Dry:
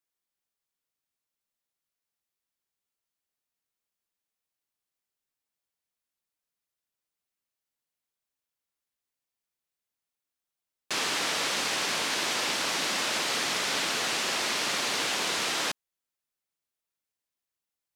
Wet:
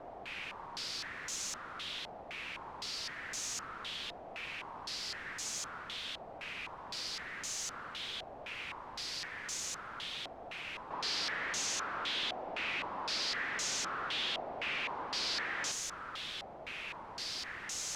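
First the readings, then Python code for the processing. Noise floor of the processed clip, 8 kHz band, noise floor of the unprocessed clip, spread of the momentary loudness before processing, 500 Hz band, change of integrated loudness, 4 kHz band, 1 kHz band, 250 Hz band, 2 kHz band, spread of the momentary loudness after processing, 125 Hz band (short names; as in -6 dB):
-49 dBFS, -5.0 dB, under -85 dBFS, 1 LU, -7.5 dB, -11.0 dB, -5.5 dB, -5.0 dB, -8.5 dB, -5.5 dB, 9 LU, -4.0 dB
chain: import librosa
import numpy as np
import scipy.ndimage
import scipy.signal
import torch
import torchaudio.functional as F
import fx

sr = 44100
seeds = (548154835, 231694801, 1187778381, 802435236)

y = np.sign(x) * np.sqrt(np.mean(np.square(x)))
y = fx.filter_held_lowpass(y, sr, hz=3.9, low_hz=710.0, high_hz=6500.0)
y = F.gain(torch.from_numpy(y), -5.0).numpy()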